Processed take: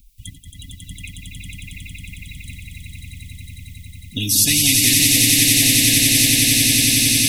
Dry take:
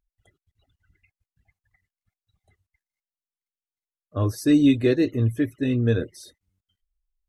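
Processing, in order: Chebyshev band-stop 260–2300 Hz, order 5; treble shelf 6.7 kHz +6.5 dB; in parallel at -2 dB: compression, threshold -31 dBFS, peak gain reduction 12.5 dB; on the sum: small resonant body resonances 300/460/670/3700 Hz, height 6 dB; on a send: echo with a slow build-up 91 ms, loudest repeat 8, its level -5 dB; on the sum: spectrum-flattening compressor 4:1; trim +1 dB

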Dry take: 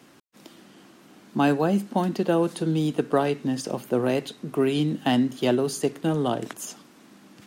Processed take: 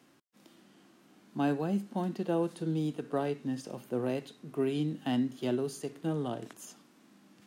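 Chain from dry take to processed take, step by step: harmonic-percussive split percussive -7 dB; trim -7.5 dB

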